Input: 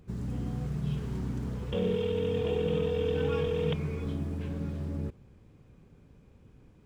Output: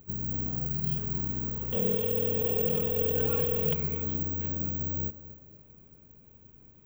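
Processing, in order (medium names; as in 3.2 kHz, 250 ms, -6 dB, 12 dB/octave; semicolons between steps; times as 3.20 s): on a send: tape echo 233 ms, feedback 55%, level -12 dB, low-pass 2.3 kHz; on the sum: careless resampling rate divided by 2×, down filtered, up zero stuff; trim -2 dB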